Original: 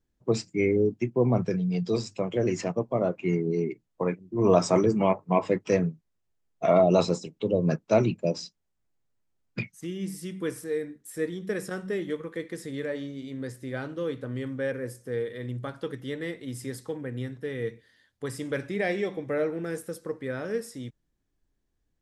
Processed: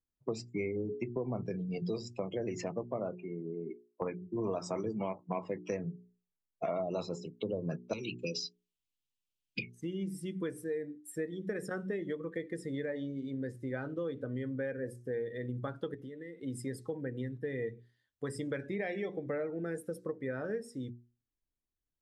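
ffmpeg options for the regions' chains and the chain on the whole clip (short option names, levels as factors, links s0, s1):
-filter_complex "[0:a]asettb=1/sr,asplit=3[s0][s1][s2];[s0]atrim=end=3.154[s3];[s1]atrim=start=3.15:end=4.02,asetpts=PTS-STARTPTS,afade=t=in:d=0.004:c=qsin,afade=t=out:st=0.866:d=0.004:c=qsin,acompressor=threshold=0.0141:ratio=3:attack=3.2:release=140:knee=1:detection=peak,highpass=170,lowpass=2000[s4];[s2]atrim=start=4.016[s5];[s3][s4]acrossfade=d=0.004:c1=hsin:c2=qsin[s6];[s6][s5]acrossfade=d=0.004:c1=qsin:c2=hsin,asettb=1/sr,asplit=3[s7][s8][s9];[s7]atrim=end=7.934[s10];[s8]atrim=start=7.93:end=9.75,asetpts=PTS-STARTPTS,afade=t=in:d=0.004:c=qsin,afade=t=out:st=1.816:d=0.004:c=qsin,highshelf=f=2100:t=q:w=3:g=11,acrossover=split=310|800[s11][s12][s13];[s11]acompressor=threshold=0.0158:ratio=4[s14];[s12]acompressor=threshold=0.0355:ratio=4[s15];[s13]acompressor=threshold=0.0178:ratio=4[s16];[s14][s15][s16]amix=inputs=3:normalize=0,asuperstop=centerf=690:order=8:qfactor=1.8[s17];[s9]atrim=start=9.746[s18];[s10][s17]acrossfade=d=0.004:c1=hsin:c2=qsin[s19];[s19][s18]acrossfade=d=0.004:c1=qsin:c2=hsin,asettb=1/sr,asplit=3[s20][s21][s22];[s20]atrim=end=15.944[s23];[s21]atrim=start=15.94:end=16.43,asetpts=PTS-STARTPTS,afade=t=in:d=0.004:c=qsin,afade=t=out:st=0.486:d=0.004:c=qsin,highpass=120,acompressor=threshold=0.01:ratio=12:attack=3.2:release=140:knee=1:detection=peak[s24];[s22]atrim=start=16.426[s25];[s23][s24]acrossfade=d=0.004:c1=hsin:c2=qsin[s26];[s26][s25]acrossfade=d=0.004:c1=qsin:c2=hsin,afftdn=nr=16:nf=-42,bandreject=f=60:t=h:w=6,bandreject=f=120:t=h:w=6,bandreject=f=180:t=h:w=6,bandreject=f=240:t=h:w=6,bandreject=f=300:t=h:w=6,bandreject=f=360:t=h:w=6,bandreject=f=420:t=h:w=6,acompressor=threshold=0.0224:ratio=6"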